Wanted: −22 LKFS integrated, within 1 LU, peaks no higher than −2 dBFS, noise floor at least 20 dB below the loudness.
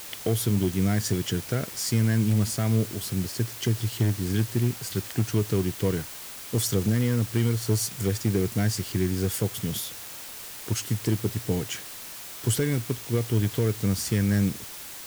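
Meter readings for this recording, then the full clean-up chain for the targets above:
share of clipped samples 0.6%; peaks flattened at −16.0 dBFS; background noise floor −40 dBFS; target noise floor −47 dBFS; integrated loudness −26.5 LKFS; sample peak −16.0 dBFS; target loudness −22.0 LKFS
→ clipped peaks rebuilt −16 dBFS
broadband denoise 7 dB, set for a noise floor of −40 dBFS
level +4.5 dB

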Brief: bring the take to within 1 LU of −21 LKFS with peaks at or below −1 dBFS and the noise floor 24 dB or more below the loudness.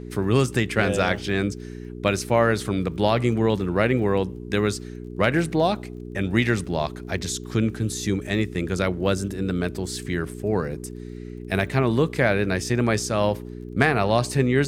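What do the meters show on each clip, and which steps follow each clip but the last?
crackle rate 28 per second; mains hum 60 Hz; hum harmonics up to 420 Hz; level of the hum −33 dBFS; integrated loudness −23.5 LKFS; sample peak −2.0 dBFS; target loudness −21.0 LKFS
→ click removal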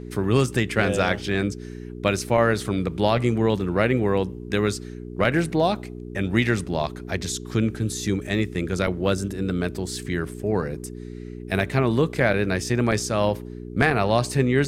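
crackle rate 0.068 per second; mains hum 60 Hz; hum harmonics up to 420 Hz; level of the hum −33 dBFS
→ hum removal 60 Hz, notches 7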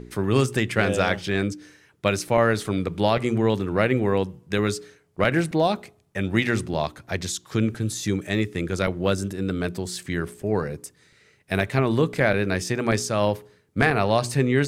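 mains hum none found; integrated loudness −24.0 LKFS; sample peak −3.0 dBFS; target loudness −21.0 LKFS
→ level +3 dB
brickwall limiter −1 dBFS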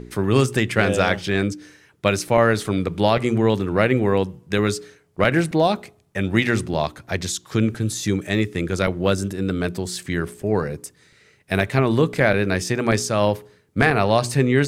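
integrated loudness −21.0 LKFS; sample peak −1.0 dBFS; background noise floor −57 dBFS

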